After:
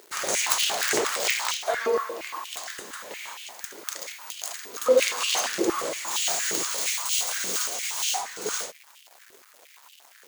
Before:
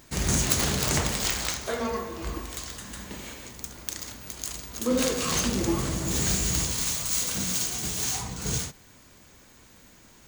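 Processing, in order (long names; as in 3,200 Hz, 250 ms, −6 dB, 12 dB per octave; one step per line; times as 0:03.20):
bit reduction 8 bits
high-pass on a step sequencer 8.6 Hz 410–2,900 Hz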